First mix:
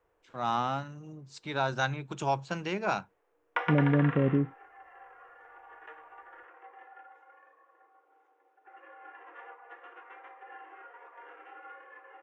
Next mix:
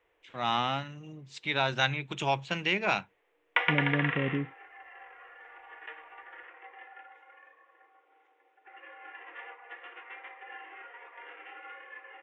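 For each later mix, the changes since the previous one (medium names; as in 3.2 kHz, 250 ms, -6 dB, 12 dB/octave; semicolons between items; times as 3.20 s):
second voice -5.5 dB; master: add high-order bell 2.6 kHz +11 dB 1.2 oct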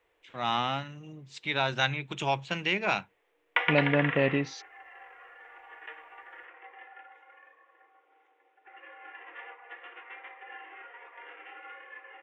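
second voice: remove Gaussian low-pass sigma 20 samples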